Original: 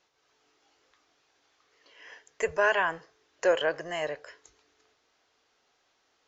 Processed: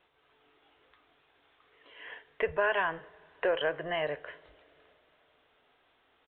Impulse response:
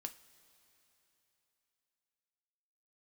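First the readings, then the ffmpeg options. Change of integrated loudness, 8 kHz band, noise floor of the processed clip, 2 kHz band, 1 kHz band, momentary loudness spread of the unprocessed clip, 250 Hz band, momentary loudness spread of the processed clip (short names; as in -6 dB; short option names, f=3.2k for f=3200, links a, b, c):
-3.0 dB, n/a, -70 dBFS, -3.0 dB, -3.0 dB, 12 LU, -2.0 dB, 19 LU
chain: -filter_complex "[0:a]acompressor=threshold=-34dB:ratio=2,asplit=2[a][b];[1:a]atrim=start_sample=2205,lowshelf=f=140:g=11[c];[b][c]afir=irnorm=-1:irlink=0,volume=-2dB[d];[a][d]amix=inputs=2:normalize=0,aresample=8000,aresample=44100"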